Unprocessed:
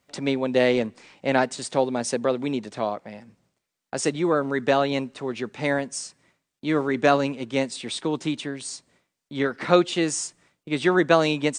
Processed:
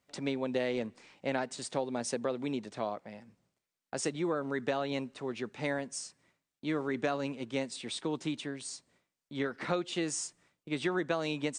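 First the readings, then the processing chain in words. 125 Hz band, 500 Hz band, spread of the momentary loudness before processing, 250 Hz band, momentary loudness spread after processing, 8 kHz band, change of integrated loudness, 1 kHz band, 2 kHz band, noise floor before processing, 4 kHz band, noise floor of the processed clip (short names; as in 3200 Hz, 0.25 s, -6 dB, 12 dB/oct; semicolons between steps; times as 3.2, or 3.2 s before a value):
-10.0 dB, -11.5 dB, 13 LU, -10.0 dB, 9 LU, -8.0 dB, -11.0 dB, -12.5 dB, -11.0 dB, -83 dBFS, -9.5 dB, under -85 dBFS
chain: compressor 6:1, threshold -20 dBFS, peak gain reduction 9 dB; gain -7.5 dB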